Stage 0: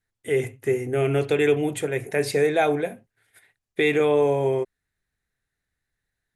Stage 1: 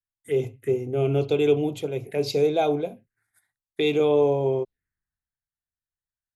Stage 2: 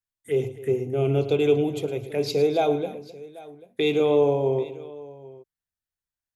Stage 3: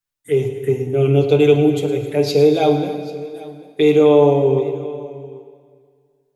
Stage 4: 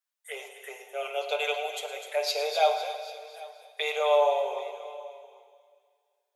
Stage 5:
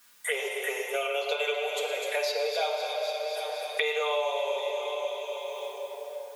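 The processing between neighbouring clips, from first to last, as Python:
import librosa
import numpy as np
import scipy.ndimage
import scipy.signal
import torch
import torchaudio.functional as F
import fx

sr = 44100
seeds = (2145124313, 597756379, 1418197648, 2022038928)

y1 = fx.env_phaser(x, sr, low_hz=430.0, high_hz=1800.0, full_db=-23.5)
y1 = fx.band_widen(y1, sr, depth_pct=40)
y2 = fx.echo_multitap(y1, sr, ms=(111, 262, 790), db=(-14.5, -17.5, -20.0))
y3 = y2 + 0.82 * np.pad(y2, (int(6.8 * sr / 1000.0), 0))[:len(y2)]
y3 = fx.rev_plate(y3, sr, seeds[0], rt60_s=2.1, hf_ratio=0.9, predelay_ms=0, drr_db=8.0)
y3 = y3 * 10.0 ** (4.0 / 20.0)
y4 = scipy.signal.sosfilt(scipy.signal.ellip(4, 1.0, 50, 590.0, 'highpass', fs=sr, output='sos'), y3)
y4 = fx.echo_wet_highpass(y4, sr, ms=251, feedback_pct=44, hz=3400.0, wet_db=-8.5)
y4 = y4 * 10.0 ** (-2.5 / 20.0)
y5 = fx.peak_eq(y4, sr, hz=730.0, db=-8.5, octaves=0.2)
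y5 = fx.room_shoebox(y5, sr, seeds[1], volume_m3=3000.0, walls='mixed', distance_m=1.8)
y5 = fx.band_squash(y5, sr, depth_pct=100)
y5 = y5 * 10.0 ** (-1.0 / 20.0)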